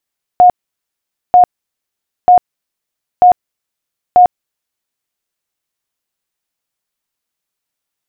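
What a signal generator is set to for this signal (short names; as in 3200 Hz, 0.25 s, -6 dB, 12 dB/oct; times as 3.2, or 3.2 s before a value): tone bursts 721 Hz, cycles 71, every 0.94 s, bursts 5, -2 dBFS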